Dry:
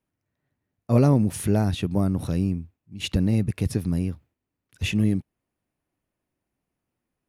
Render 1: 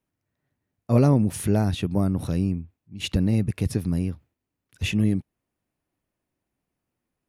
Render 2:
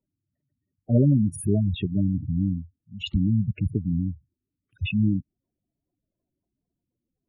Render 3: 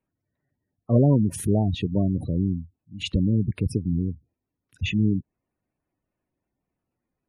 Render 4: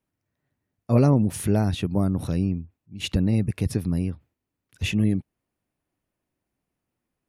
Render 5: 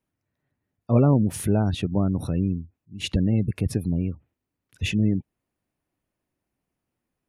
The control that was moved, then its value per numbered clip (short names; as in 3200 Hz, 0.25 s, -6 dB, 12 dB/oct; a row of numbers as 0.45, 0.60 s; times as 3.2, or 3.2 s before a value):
spectral gate, under each frame's peak: -60, -10, -20, -50, -35 dB